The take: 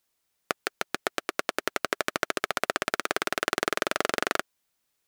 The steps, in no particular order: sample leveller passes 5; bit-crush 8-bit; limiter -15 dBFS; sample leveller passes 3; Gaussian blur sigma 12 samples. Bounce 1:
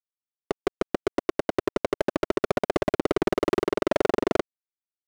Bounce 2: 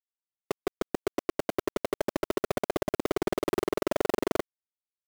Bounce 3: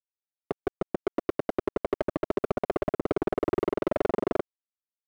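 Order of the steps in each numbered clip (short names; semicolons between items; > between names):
bit-crush > second sample leveller > Gaussian blur > limiter > first sample leveller; second sample leveller > limiter > Gaussian blur > bit-crush > first sample leveller; limiter > bit-crush > first sample leveller > Gaussian blur > second sample leveller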